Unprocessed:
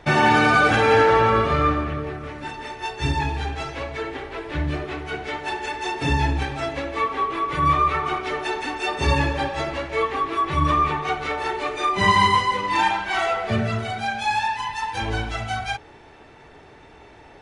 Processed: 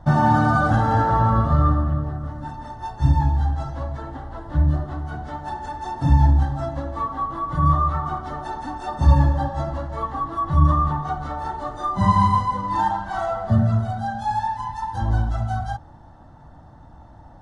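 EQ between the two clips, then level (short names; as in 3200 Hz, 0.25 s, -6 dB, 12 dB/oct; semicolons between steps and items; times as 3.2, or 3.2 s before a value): tilt shelf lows +9 dB, about 910 Hz; fixed phaser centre 1000 Hz, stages 4; 0.0 dB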